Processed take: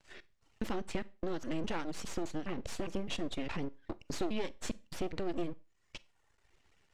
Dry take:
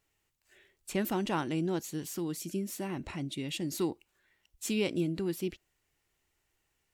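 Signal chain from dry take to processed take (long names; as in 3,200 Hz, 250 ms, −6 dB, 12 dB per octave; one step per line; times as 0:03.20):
slices reordered back to front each 205 ms, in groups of 3
reverb reduction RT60 0.89 s
downward compressor 3 to 1, threshold −47 dBFS, peak gain reduction 15.5 dB
half-wave rectification
high-frequency loss of the air 88 metres
four-comb reverb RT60 0.31 s, combs from 32 ms, DRR 19.5 dB
level +15 dB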